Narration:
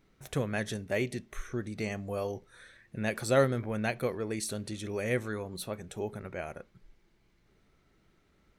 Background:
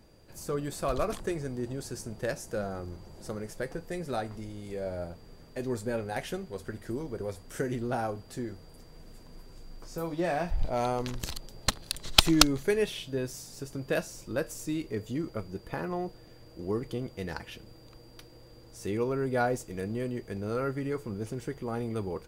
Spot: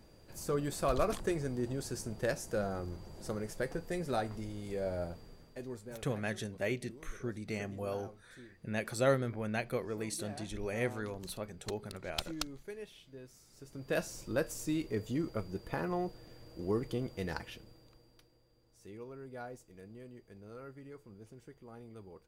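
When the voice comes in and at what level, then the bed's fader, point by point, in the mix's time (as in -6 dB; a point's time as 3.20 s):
5.70 s, -4.0 dB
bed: 5.19 s -1 dB
6.10 s -18.5 dB
13.42 s -18.5 dB
14.04 s -1.5 dB
17.37 s -1.5 dB
18.45 s -17.5 dB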